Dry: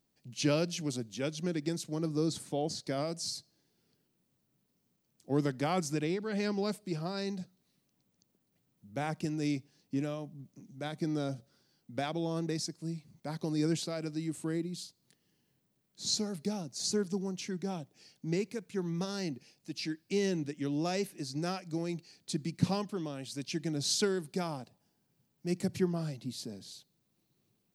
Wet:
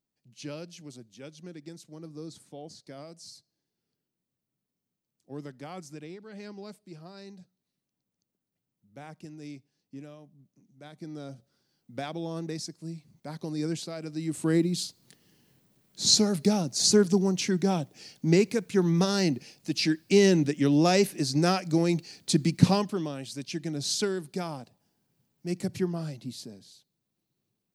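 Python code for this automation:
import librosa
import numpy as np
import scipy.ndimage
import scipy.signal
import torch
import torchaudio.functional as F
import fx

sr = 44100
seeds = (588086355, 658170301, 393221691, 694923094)

y = fx.gain(x, sr, db=fx.line((10.73, -10.0), (11.97, -0.5), (14.05, -0.5), (14.57, 11.0), (22.48, 11.0), (23.44, 1.5), (26.31, 1.5), (26.73, -5.5)))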